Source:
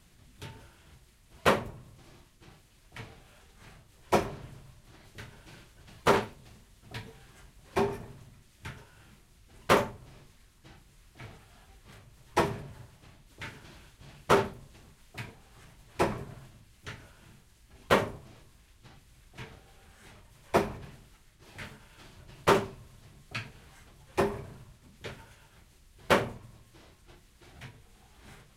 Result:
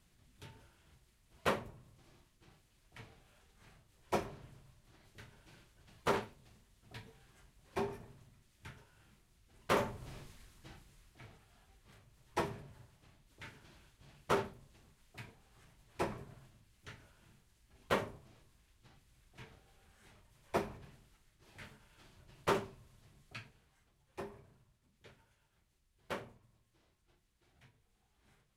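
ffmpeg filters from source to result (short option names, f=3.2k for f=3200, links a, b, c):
-af "volume=3dB,afade=t=in:st=9.73:d=0.37:silence=0.237137,afade=t=out:st=10.1:d=1.14:silence=0.237137,afade=t=out:st=23.21:d=0.48:silence=0.375837"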